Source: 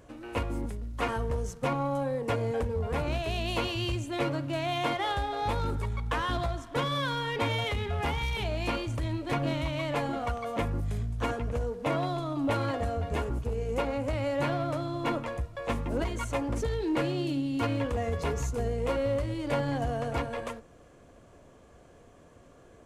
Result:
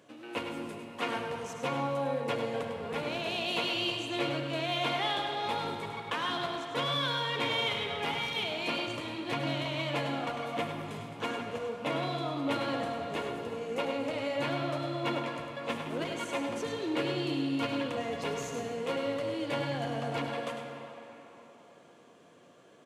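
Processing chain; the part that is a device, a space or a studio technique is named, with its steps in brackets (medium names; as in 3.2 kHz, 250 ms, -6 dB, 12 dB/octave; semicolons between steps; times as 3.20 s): PA in a hall (high-pass 150 Hz 24 dB/octave; peaking EQ 3.3 kHz +7.5 dB 1.2 oct; delay 102 ms -8.5 dB; reverberation RT60 3.9 s, pre-delay 52 ms, DRR 4 dB); trim -4.5 dB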